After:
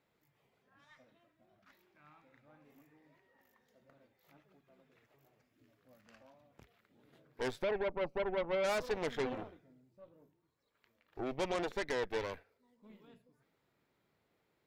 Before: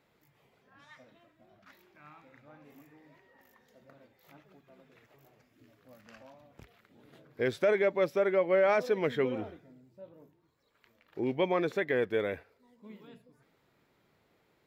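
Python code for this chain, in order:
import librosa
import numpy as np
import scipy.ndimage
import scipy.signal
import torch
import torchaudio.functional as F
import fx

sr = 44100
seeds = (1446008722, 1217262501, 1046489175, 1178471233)

y = fx.moving_average(x, sr, points=25, at=(7.62, 8.63), fade=0.02)
y = fx.cheby_harmonics(y, sr, harmonics=(8,), levels_db=(-14,), full_scale_db=-17.0)
y = y * librosa.db_to_amplitude(-8.0)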